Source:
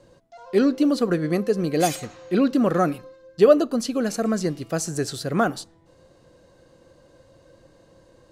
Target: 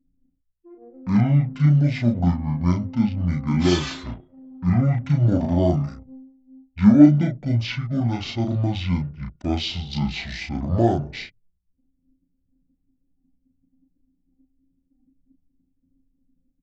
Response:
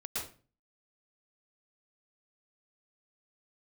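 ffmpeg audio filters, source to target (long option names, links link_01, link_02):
-filter_complex "[0:a]anlmdn=0.398,asplit=2[link_01][link_02];[link_02]adelay=17,volume=-3.5dB[link_03];[link_01][link_03]amix=inputs=2:normalize=0,asetrate=22050,aresample=44100,volume=-1dB"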